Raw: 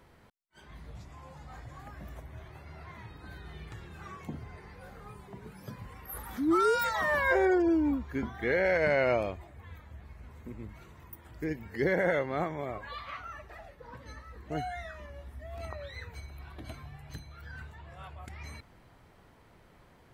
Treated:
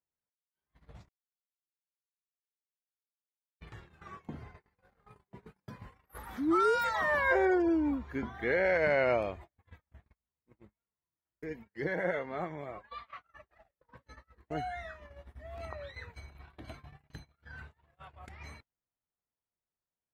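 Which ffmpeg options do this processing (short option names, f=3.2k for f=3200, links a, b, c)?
-filter_complex "[0:a]asettb=1/sr,asplit=3[a][b][c];[a]atrim=end=10.124[d];[b]atrim=start=10.12:end=13.34,asetpts=PTS-STARTPTS,afade=t=in:d=0.004:c=qsin,afade=t=out:st=3.216:d=0.004:c=qsin,flanger=delay=4.2:depth=2.3:regen=43:speed=1.4:shape=sinusoidal[e];[c]atrim=start=13.336[f];[d][e]acrossfade=d=0.004:c1=hsin:c2=qsin[g];[g][f]acrossfade=d=0.004:c1=qsin:c2=hsin,asplit=3[h][i][j];[h]atrim=end=1.09,asetpts=PTS-STARTPTS,afade=t=out:st=1.086:d=0.004:c=hsin[k];[i]atrim=start=1.09:end=3.6,asetpts=PTS-STARTPTS,volume=0[l];[j]atrim=start=3.6,asetpts=PTS-STARTPTS,afade=t=in:d=0.004:c=hsin[m];[k][l][m]concat=n=3:v=0:a=1,aemphasis=mode=reproduction:type=cd,agate=range=-39dB:threshold=-44dB:ratio=16:detection=peak,lowshelf=f=340:g=-5"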